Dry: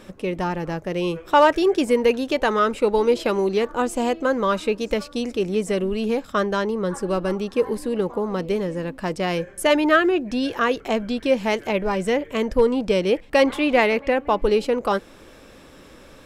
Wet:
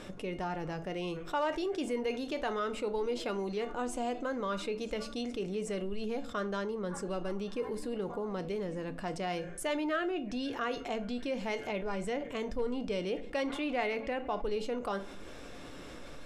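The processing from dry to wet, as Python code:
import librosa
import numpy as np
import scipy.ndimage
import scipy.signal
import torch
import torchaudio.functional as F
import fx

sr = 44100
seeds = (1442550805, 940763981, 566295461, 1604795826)

y = scipy.signal.sosfilt(scipy.signal.butter(2, 9800.0, 'lowpass', fs=sr, output='sos'), x)
y = fx.comb_fb(y, sr, f0_hz=710.0, decay_s=0.17, harmonics='all', damping=0.0, mix_pct=70)
y = fx.room_shoebox(y, sr, seeds[0], volume_m3=250.0, walls='furnished', distance_m=0.4)
y = fx.env_flatten(y, sr, amount_pct=50)
y = F.gain(torch.from_numpy(y), -8.5).numpy()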